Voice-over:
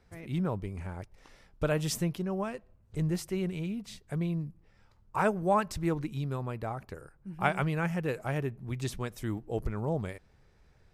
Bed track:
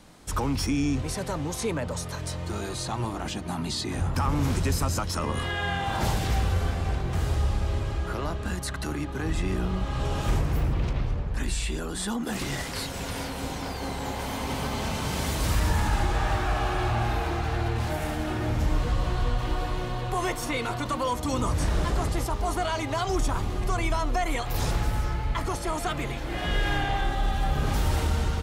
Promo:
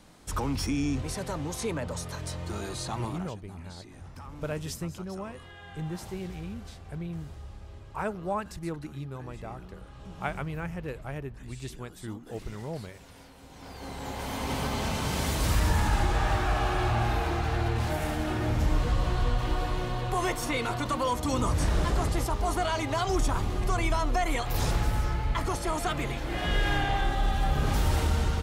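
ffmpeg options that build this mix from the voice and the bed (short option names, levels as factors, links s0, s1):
-filter_complex "[0:a]adelay=2800,volume=0.562[s0];[1:a]volume=5.62,afade=t=out:st=3.05:d=0.29:silence=0.16788,afade=t=in:st=13.49:d=1.05:silence=0.125893[s1];[s0][s1]amix=inputs=2:normalize=0"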